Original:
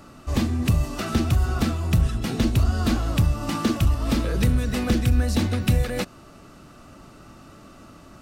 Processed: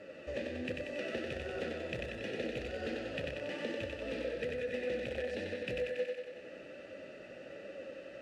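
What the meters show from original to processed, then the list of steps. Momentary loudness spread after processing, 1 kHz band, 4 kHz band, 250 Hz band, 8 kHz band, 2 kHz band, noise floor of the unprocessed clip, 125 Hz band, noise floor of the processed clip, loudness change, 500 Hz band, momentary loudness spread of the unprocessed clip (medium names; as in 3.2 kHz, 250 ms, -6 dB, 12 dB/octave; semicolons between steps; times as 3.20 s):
12 LU, -18.0 dB, -13.0 dB, -18.5 dB, under -20 dB, -7.0 dB, -48 dBFS, -27.5 dB, -51 dBFS, -16.5 dB, -3.5 dB, 4 LU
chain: flange 1.3 Hz, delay 9.3 ms, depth 7.9 ms, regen +26%; band-stop 700 Hz, Q 12; in parallel at -6 dB: integer overflow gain 15 dB; on the sum: vowel filter e; bass shelf 120 Hz +4 dB; compression 3:1, threshold -51 dBFS, peak gain reduction 15.5 dB; low-pass 11 kHz; on a send: thinning echo 93 ms, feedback 68%, high-pass 240 Hz, level -3 dB; on the sum: trim +10.5 dB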